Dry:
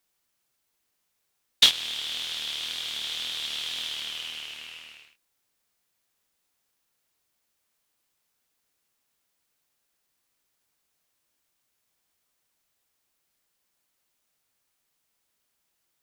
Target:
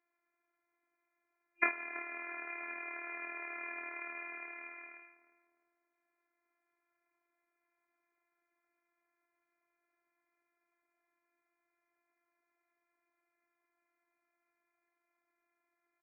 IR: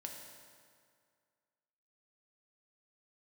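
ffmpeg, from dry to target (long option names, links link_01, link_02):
-filter_complex "[0:a]afftfilt=real='re*between(b*sr/4096,230,2500)':imag='im*between(b*sr/4096,230,2500)':win_size=4096:overlap=0.75,afftfilt=real='hypot(re,im)*cos(PI*b)':imag='0':win_size=512:overlap=0.75,asplit=2[link_01][link_02];[link_02]adelay=328,lowpass=frequency=1300:poles=1,volume=-15dB,asplit=2[link_03][link_04];[link_04]adelay=328,lowpass=frequency=1300:poles=1,volume=0.39,asplit=2[link_05][link_06];[link_06]adelay=328,lowpass=frequency=1300:poles=1,volume=0.39,asplit=2[link_07][link_08];[link_08]adelay=328,lowpass=frequency=1300:poles=1,volume=0.39[link_09];[link_01][link_03][link_05][link_07][link_09]amix=inputs=5:normalize=0,volume=4dB"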